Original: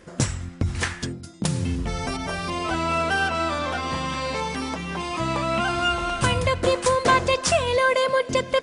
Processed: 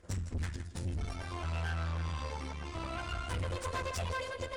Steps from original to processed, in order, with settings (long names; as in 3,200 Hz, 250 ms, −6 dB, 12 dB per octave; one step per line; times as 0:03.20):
time stretch by phase vocoder 0.53×
low shelf with overshoot 110 Hz +9 dB, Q 3
on a send: echo with a time of its own for lows and highs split 310 Hz, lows 84 ms, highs 160 ms, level −13 dB
on the sum: tube saturation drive 23 dB, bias 0.75
level −8.5 dB